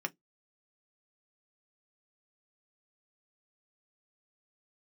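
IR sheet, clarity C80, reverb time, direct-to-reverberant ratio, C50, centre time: 44.5 dB, 0.15 s, 4.0 dB, 32.0 dB, 3 ms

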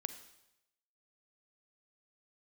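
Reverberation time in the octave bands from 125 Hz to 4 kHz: 0.95 s, 0.80 s, 0.90 s, 0.85 s, 0.85 s, 0.85 s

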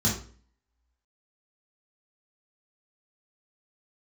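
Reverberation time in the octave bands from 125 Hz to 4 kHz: 0.50 s, 0.50 s, 0.45 s, 0.40 s, 0.40 s, 0.35 s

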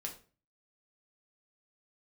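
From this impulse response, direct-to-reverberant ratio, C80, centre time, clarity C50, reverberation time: 0.5 dB, 15.5 dB, 15 ms, 10.5 dB, 0.40 s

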